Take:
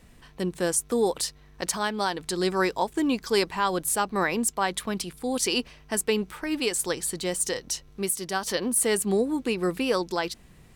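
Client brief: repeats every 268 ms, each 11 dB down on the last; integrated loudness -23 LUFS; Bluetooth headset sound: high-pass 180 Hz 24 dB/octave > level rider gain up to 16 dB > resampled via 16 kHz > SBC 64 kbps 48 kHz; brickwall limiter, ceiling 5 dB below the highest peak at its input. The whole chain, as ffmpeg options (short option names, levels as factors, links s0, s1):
-af "alimiter=limit=0.141:level=0:latency=1,highpass=f=180:w=0.5412,highpass=f=180:w=1.3066,aecho=1:1:268|536|804:0.282|0.0789|0.0221,dynaudnorm=m=6.31,aresample=16000,aresample=44100,volume=2" -ar 48000 -c:a sbc -b:a 64k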